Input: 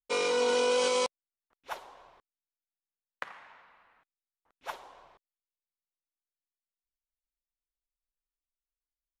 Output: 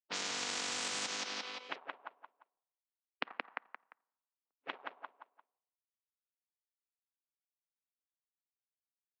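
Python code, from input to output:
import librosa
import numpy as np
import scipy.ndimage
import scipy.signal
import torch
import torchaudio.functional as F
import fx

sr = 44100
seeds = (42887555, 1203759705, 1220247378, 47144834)

p1 = fx.power_curve(x, sr, exponent=2.0)
p2 = fx.env_lowpass(p1, sr, base_hz=930.0, full_db=-32.0)
p3 = fx.cabinet(p2, sr, low_hz=250.0, low_slope=24, high_hz=4500.0, hz=(360.0, 570.0, 2700.0), db=(-6, -5, 3))
p4 = p3 + fx.echo_feedback(p3, sr, ms=174, feedback_pct=31, wet_db=-8.0, dry=0)
p5 = fx.spectral_comp(p4, sr, ratio=10.0)
y = F.gain(torch.from_numpy(p5), 8.0).numpy()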